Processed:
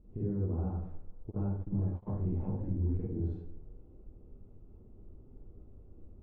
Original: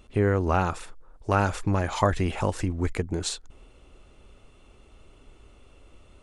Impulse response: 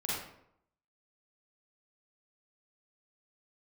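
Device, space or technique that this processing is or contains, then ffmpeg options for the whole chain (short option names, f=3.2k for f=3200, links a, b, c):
television next door: -filter_complex "[0:a]acompressor=threshold=-32dB:ratio=4,lowpass=330[a];[1:a]atrim=start_sample=2205[b];[a][b]afir=irnorm=-1:irlink=0,asplit=3[c][d][e];[c]afade=t=out:st=1.3:d=0.02[f];[d]agate=range=-28dB:threshold=-31dB:ratio=16:detection=peak,afade=t=in:st=1.3:d=0.02,afade=t=out:st=2.06:d=0.02[g];[e]afade=t=in:st=2.06:d=0.02[h];[f][g][h]amix=inputs=3:normalize=0,volume=-3dB"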